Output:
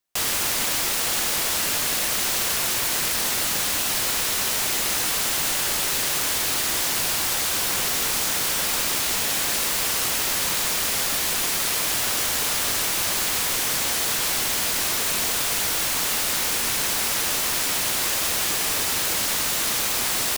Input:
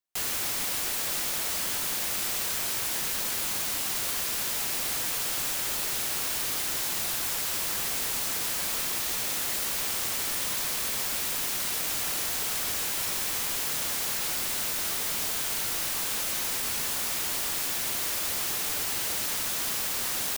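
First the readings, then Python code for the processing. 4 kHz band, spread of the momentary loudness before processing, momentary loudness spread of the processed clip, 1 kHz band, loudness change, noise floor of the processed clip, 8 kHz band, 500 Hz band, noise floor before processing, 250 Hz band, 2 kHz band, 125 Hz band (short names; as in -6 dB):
+8.0 dB, 0 LU, 0 LU, +8.0 dB, +6.0 dB, -24 dBFS, +7.0 dB, +8.0 dB, -30 dBFS, +7.5 dB, +8.0 dB, +7.5 dB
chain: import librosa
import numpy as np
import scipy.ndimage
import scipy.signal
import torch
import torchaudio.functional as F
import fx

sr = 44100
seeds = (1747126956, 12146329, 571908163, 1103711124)

y = fx.doppler_dist(x, sr, depth_ms=0.68)
y = y * 10.0 ** (8.0 / 20.0)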